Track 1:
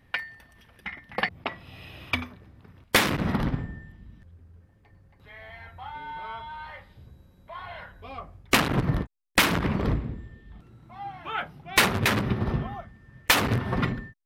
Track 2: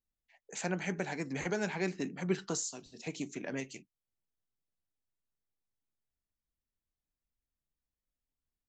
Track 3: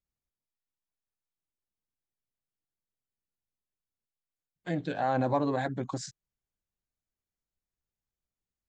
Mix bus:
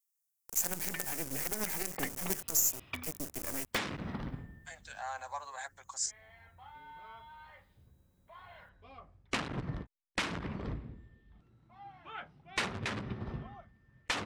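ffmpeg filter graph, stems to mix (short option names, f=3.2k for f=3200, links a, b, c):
-filter_complex "[0:a]lowpass=f=8.3k:w=0.5412,lowpass=f=8.3k:w=1.3066,adelay=800,volume=-13.5dB[a];[1:a]afwtdn=0.00355,acrusher=bits=5:dc=4:mix=0:aa=0.000001,volume=0.5dB[b];[2:a]highpass=f=880:w=0.5412,highpass=f=880:w=1.3066,volume=-5.5dB[c];[b][c]amix=inputs=2:normalize=0,aexciter=amount=8.3:drive=2.6:freq=5.5k,alimiter=limit=-16dB:level=0:latency=1:release=64,volume=0dB[d];[a][d]amix=inputs=2:normalize=0"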